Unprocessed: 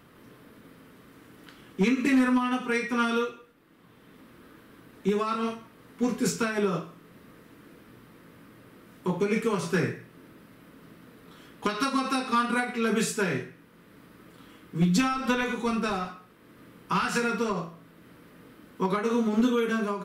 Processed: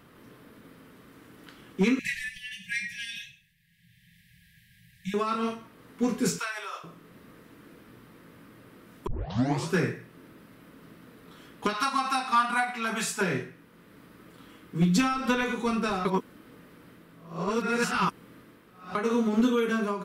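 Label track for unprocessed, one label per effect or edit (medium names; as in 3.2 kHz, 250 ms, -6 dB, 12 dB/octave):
1.990000	5.140000	brick-wall FIR band-stop 190–1600 Hz
6.390000	6.840000	Bessel high-pass 1.1 kHz, order 4
9.070000	9.070000	tape start 0.62 s
11.730000	13.210000	resonant low shelf 610 Hz -7 dB, Q 3
16.050000	18.950000	reverse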